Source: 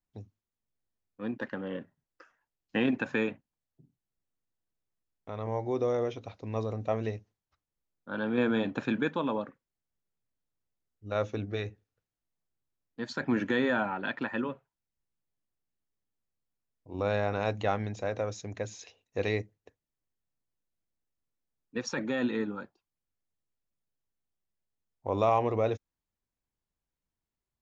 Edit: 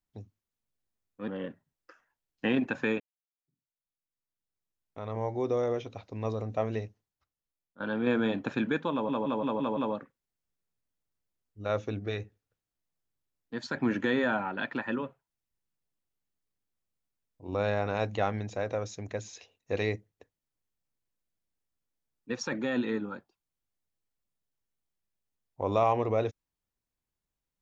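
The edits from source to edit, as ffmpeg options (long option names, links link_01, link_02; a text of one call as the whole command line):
ffmpeg -i in.wav -filter_complex "[0:a]asplit=9[link_01][link_02][link_03][link_04][link_05][link_06][link_07][link_08][link_09];[link_01]atrim=end=1.282[link_10];[link_02]atrim=start=1.588:end=3.31,asetpts=PTS-STARTPTS,afade=type=out:start_time=1.718:duration=0.004:curve=hsin[link_11];[link_03]atrim=start=3.31:end=8.11,asetpts=PTS-STARTPTS,afade=type=in:duration=2.07:curve=qua,afade=type=out:start_time=3.8:duration=1:silence=0.266073[link_12];[link_04]atrim=start=8.11:end=9.402,asetpts=PTS-STARTPTS,afade=type=in:duration=0.004:curve=hsin:silence=0.266073[link_13];[link_05]atrim=start=9.228:end=9.402[link_14];[link_06]atrim=start=9.228:end=9.402[link_15];[link_07]atrim=start=9.228:end=9.402[link_16];[link_08]atrim=start=9.228:end=9.402[link_17];[link_09]atrim=start=9.228[link_18];[link_11][link_12][link_13]concat=n=3:v=0:a=1[link_19];[link_10][link_19]acrossfade=duration=0.004:curve1=hsin:curve2=hsin[link_20];[link_20][link_14]acrossfade=duration=0.004:curve1=hsin:curve2=hsin[link_21];[link_21][link_15]acrossfade=duration=0.004:curve1=hsin:curve2=hsin[link_22];[link_22][link_16]acrossfade=duration=0.004:curve1=hsin:curve2=hsin[link_23];[link_23][link_17]acrossfade=duration=0.004:curve1=hsin:curve2=hsin[link_24];[link_24][link_18]acrossfade=duration=0.004:curve1=hsin:curve2=hsin" out.wav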